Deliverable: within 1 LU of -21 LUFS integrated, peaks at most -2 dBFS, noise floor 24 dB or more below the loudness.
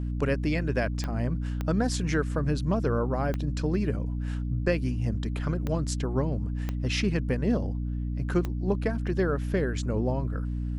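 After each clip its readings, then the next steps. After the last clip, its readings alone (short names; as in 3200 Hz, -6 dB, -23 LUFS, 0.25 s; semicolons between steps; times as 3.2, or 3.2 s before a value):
clicks 6; hum 60 Hz; harmonics up to 300 Hz; hum level -28 dBFS; loudness -28.5 LUFS; peak -12.0 dBFS; loudness target -21.0 LUFS
-> de-click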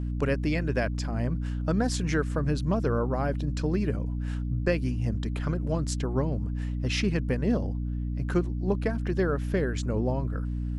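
clicks 0; hum 60 Hz; harmonics up to 300 Hz; hum level -28 dBFS
-> notches 60/120/180/240/300 Hz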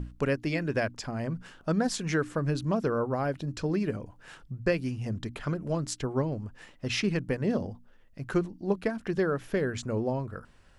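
hum none; loudness -31.0 LUFS; peak -13.5 dBFS; loudness target -21.0 LUFS
-> gain +10 dB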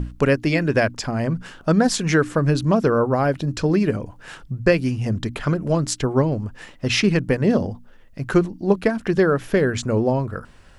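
loudness -21.0 LUFS; peak -3.5 dBFS; noise floor -47 dBFS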